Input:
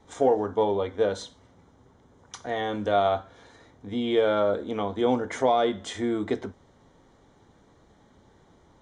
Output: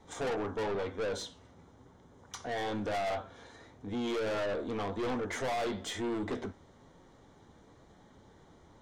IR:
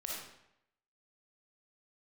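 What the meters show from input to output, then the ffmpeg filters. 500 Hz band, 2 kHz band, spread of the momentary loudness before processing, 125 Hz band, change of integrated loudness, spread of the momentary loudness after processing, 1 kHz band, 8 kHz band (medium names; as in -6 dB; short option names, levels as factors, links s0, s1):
-10.0 dB, -3.0 dB, 10 LU, -5.0 dB, -9.0 dB, 12 LU, -9.5 dB, -1.5 dB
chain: -af "flanger=delay=5.4:depth=8:regen=78:speed=1:shape=sinusoidal,aeval=exprs='(tanh(56.2*val(0)+0.15)-tanh(0.15))/56.2':c=same,volume=1.58"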